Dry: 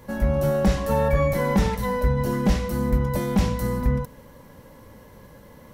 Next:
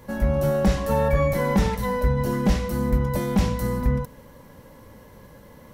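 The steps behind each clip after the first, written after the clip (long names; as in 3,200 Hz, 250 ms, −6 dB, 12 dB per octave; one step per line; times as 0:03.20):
no processing that can be heard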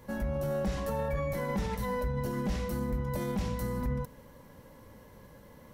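brickwall limiter −18.5 dBFS, peak gain reduction 7 dB
level −6 dB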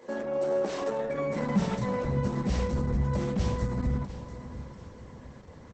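high-pass filter sweep 370 Hz → 73 Hz, 0:00.87–0:02.37
repeating echo 694 ms, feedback 39%, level −13 dB
level +2.5 dB
Opus 10 kbit/s 48,000 Hz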